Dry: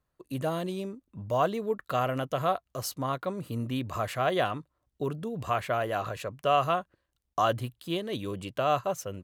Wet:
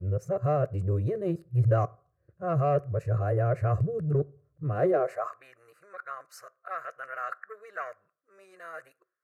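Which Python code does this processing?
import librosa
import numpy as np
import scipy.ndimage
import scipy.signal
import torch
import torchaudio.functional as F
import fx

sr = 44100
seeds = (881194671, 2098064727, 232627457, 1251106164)

y = x[::-1].copy()
y = scipy.signal.sosfilt(scipy.signal.bessel(2, 8900.0, 'lowpass', norm='mag', fs=sr, output='sos'), y)
y = fx.tilt_shelf(y, sr, db=10.0, hz=800.0)
y = 10.0 ** (-14.0 / 20.0) * np.tanh(y / 10.0 ** (-14.0 / 20.0))
y = fx.filter_sweep_highpass(y, sr, from_hz=100.0, to_hz=1500.0, start_s=4.67, end_s=5.35, q=2.6)
y = fx.fixed_phaser(y, sr, hz=900.0, stages=6)
y = fx.rev_fdn(y, sr, rt60_s=0.45, lf_ratio=1.0, hf_ratio=0.55, size_ms=39.0, drr_db=17.5)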